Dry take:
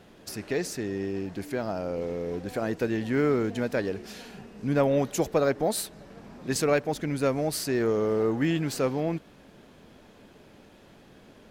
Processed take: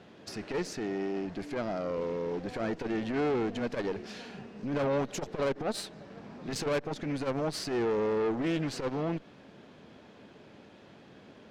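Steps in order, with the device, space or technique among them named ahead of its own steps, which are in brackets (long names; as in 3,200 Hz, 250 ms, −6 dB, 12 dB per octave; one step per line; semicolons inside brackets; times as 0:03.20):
valve radio (band-pass filter 92–5,200 Hz; tube saturation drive 27 dB, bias 0.55; saturating transformer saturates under 160 Hz)
level +2.5 dB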